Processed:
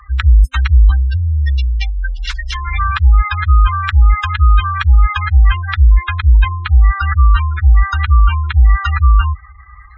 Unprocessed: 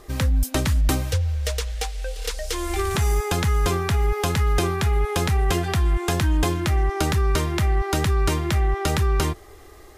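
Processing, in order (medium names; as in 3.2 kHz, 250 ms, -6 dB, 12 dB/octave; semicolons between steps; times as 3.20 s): high-pass 72 Hz 12 dB/octave; spectral gate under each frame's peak -15 dB strong; inverse Chebyshev band-stop 120–690 Hz, stop band 40 dB; tape spacing loss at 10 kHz 26 dB; loudness maximiser +21 dB; trim -1 dB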